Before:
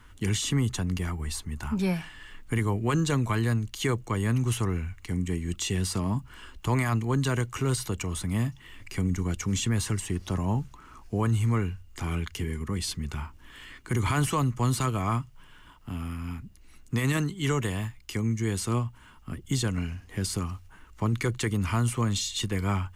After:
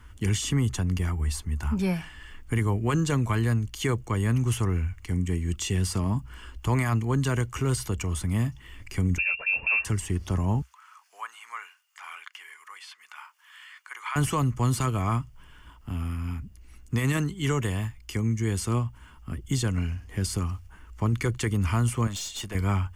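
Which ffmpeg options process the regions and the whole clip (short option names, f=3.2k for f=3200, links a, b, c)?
-filter_complex "[0:a]asettb=1/sr,asplit=3[a][b][c];[a]atrim=end=9.184[d];[b]atrim=start=9.18:end=9.85,asetpts=PTS-STARTPTS,afade=t=in:d=0.004:c=qsin,afade=t=out:st=0.666:d=0.004:c=qsin,equalizer=f=410:w=3.5:g=13.5,lowpass=f=2.4k:t=q:w=0.5098,lowpass=f=2.4k:t=q:w=0.6013,lowpass=f=2.4k:t=q:w=0.9,lowpass=f=2.4k:t=q:w=2.563,afreqshift=-2800[e];[c]atrim=start=9.846[f];[d][e]acrossfade=d=0.004:c1=hsin:c2=qsin[g];[g][f]acrossfade=d=0.004:c1=qsin:c2=hsin,asettb=1/sr,asplit=3[h][i][j];[h]atrim=end=10.624[k];[i]atrim=start=10.62:end=14.16,asetpts=PTS-STARTPTS,afade=t=in:d=0.004:c=qsin,afade=t=out:st=3.536:d=0.004:c=qsin,highpass=f=1k:w=0.5412,highpass=f=1k:w=1.3066,acrossover=split=3100[l][m];[m]acompressor=threshold=-54dB:ratio=4:attack=1:release=60[n];[l][n]amix=inputs=2:normalize=0[o];[j]atrim=start=14.156[p];[k][o]acrossfade=d=0.004:c1=hsin:c2=qsin[q];[q][p]acrossfade=d=0.004:c1=qsin:c2=hsin,asettb=1/sr,asplit=3[r][s][t];[r]atrim=end=22.074[u];[s]atrim=start=22.07:end=22.55,asetpts=PTS-STARTPTS,afade=t=in:d=0.004:c=qsin,afade=t=out:st=0.476:d=0.004:c=qsin,lowshelf=f=220:g=-10.5,aeval=exprs='(tanh(25.1*val(0)+0.3)-tanh(0.3))/25.1':c=same[v];[t]atrim=start=22.546[w];[u][v]acrossfade=d=0.004:c1=hsin:c2=qsin[x];[x][w]acrossfade=d=0.004:c1=qsin:c2=hsin,equalizer=f=63:w=1.9:g=11.5,bandreject=f=3.9k:w=7.8"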